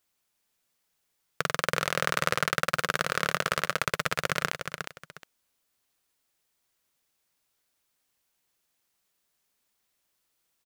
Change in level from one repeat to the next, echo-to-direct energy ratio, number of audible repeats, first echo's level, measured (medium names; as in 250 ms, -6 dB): -12.0 dB, -6.5 dB, 2, -7.0 dB